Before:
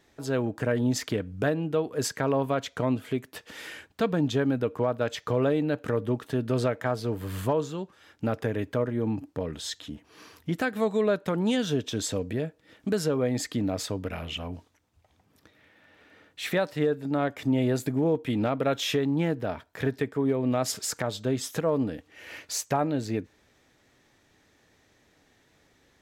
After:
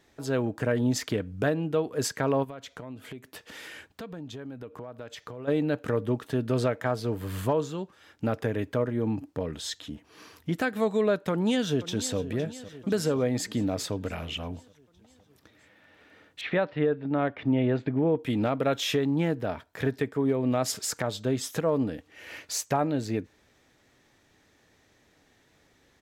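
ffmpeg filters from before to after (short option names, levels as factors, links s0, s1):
-filter_complex "[0:a]asplit=3[s0][s1][s2];[s0]afade=t=out:st=2.43:d=0.02[s3];[s1]acompressor=threshold=0.0112:ratio=4:attack=3.2:release=140:knee=1:detection=peak,afade=t=in:st=2.43:d=0.02,afade=t=out:st=5.47:d=0.02[s4];[s2]afade=t=in:st=5.47:d=0.02[s5];[s3][s4][s5]amix=inputs=3:normalize=0,asplit=2[s6][s7];[s7]afade=t=in:st=11.3:d=0.01,afade=t=out:st=12.17:d=0.01,aecho=0:1:510|1020|1530|2040|2550|3060|3570:0.177828|0.115588|0.0751323|0.048836|0.0317434|0.0206332|0.0134116[s8];[s6][s8]amix=inputs=2:normalize=0,asettb=1/sr,asplit=3[s9][s10][s11];[s9]atrim=end=16.414[s12];[s10]atrim=start=16.41:end=18.19,asetpts=PTS-STARTPTS,afade=t=in:d=0.004:c=qsin,afade=t=out:st=1.776:d=0.004:c=qsin,lowpass=f=3200:w=0.5412,lowpass=f=3200:w=1.3066[s13];[s11]atrim=start=18.186[s14];[s12][s13]acrossfade=d=0.004:c1=hsin:c2=qsin[s15];[s15][s14]acrossfade=d=0.004:c1=qsin:c2=hsin"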